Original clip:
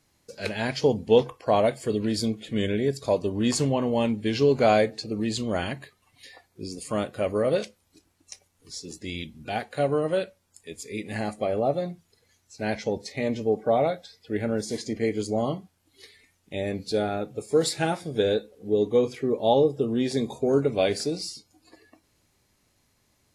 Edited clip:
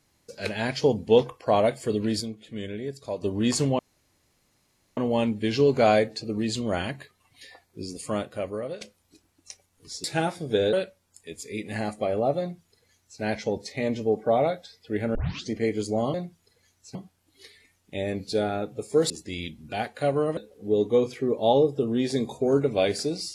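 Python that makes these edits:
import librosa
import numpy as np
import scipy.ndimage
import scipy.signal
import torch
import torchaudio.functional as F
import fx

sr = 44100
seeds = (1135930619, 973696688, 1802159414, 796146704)

y = fx.edit(x, sr, fx.fade_down_up(start_s=2.2, length_s=1.03, db=-8.5, fade_s=0.18, curve='exp'),
    fx.insert_room_tone(at_s=3.79, length_s=1.18),
    fx.fade_out_to(start_s=6.86, length_s=0.77, floor_db=-15.5),
    fx.swap(start_s=8.86, length_s=1.27, other_s=17.69, other_length_s=0.69),
    fx.duplicate(start_s=11.8, length_s=0.81, to_s=15.54),
    fx.tape_start(start_s=14.55, length_s=0.35), tone=tone)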